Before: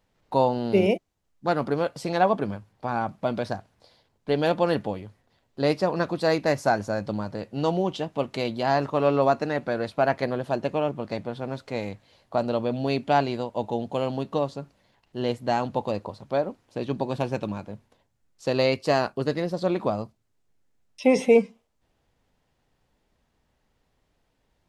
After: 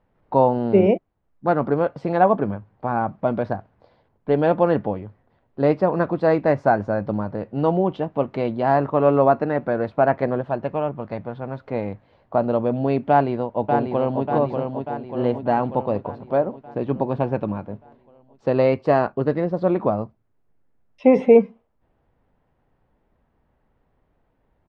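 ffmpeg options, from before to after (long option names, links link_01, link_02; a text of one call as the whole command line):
ffmpeg -i in.wav -filter_complex "[0:a]asettb=1/sr,asplit=3[link_01][link_02][link_03];[link_01]atrim=end=10.414[link_04];[link_02]atrim=start=10.41:end=11.64,asetpts=PTS-STARTPTS,afade=type=in:duration=0.004:curve=qsin,afade=type=out:start_time=1.226:duration=0.004:curve=qsin,equalizer=frequency=330:width=0.66:gain=-5.5[link_05];[link_03]atrim=start=11.636[link_06];[link_04][link_05]acrossfade=duration=0.004:curve1=hsin:curve2=qsin[link_07];[link_07][link_06]acrossfade=duration=0.004:curve1=qsin:curve2=hsin,asplit=2[link_08][link_09];[link_09]afade=type=in:start_time=13.09:duration=0.01,afade=type=out:start_time=14.25:duration=0.01,aecho=0:1:590|1180|1770|2360|2950|3540|4130|4720:0.562341|0.337405|0.202443|0.121466|0.0728794|0.0437277|0.0262366|0.015742[link_10];[link_08][link_10]amix=inputs=2:normalize=0,lowpass=1500,volume=5dB" out.wav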